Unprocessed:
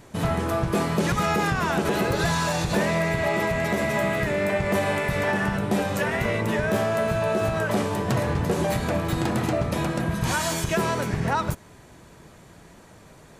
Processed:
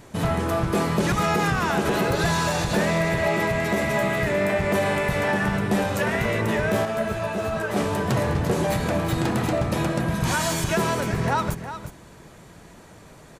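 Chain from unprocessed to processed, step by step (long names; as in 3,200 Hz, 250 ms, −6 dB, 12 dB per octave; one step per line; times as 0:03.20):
in parallel at −6.5 dB: soft clipping −22 dBFS, distortion −13 dB
on the sum: single-tap delay 360 ms −11 dB
0:06.85–0:07.76: string-ensemble chorus
level −1.5 dB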